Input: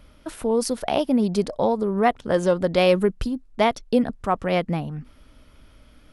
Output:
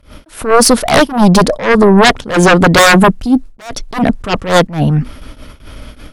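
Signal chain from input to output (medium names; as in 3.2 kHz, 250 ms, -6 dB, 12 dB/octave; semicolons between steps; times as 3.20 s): gate with hold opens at -41 dBFS; sine folder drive 15 dB, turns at -5 dBFS; attacks held to a fixed rise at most 150 dB/s; trim +2.5 dB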